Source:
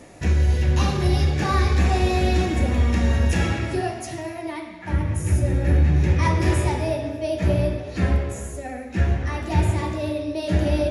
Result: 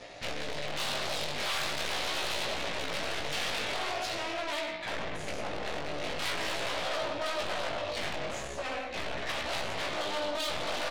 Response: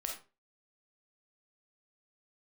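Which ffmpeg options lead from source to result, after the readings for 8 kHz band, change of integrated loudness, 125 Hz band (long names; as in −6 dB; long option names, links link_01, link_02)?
−3.5 dB, −11.0 dB, −28.0 dB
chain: -filter_complex "[0:a]aeval=exprs='0.422*(cos(1*acos(clip(val(0)/0.422,-1,1)))-cos(1*PI/2))+0.15*(cos(8*acos(clip(val(0)/0.422,-1,1)))-cos(8*PI/2))':channel_layout=same,alimiter=limit=-15dB:level=0:latency=1:release=12,lowpass=frequency=4000:width_type=q:width=2,asplit=2[link_01][link_02];[link_02]adelay=110,highpass=300,lowpass=3400,asoftclip=type=hard:threshold=-20.5dB,volume=-10dB[link_03];[link_01][link_03]amix=inputs=2:normalize=0,aeval=exprs='(tanh(31.6*val(0)+0.45)-tanh(0.45))/31.6':channel_layout=same,equalizer=frequency=600:width_type=o:width=0.81:gain=9,flanger=delay=17:depth=3.5:speed=0.43,tiltshelf=frequency=970:gain=-7"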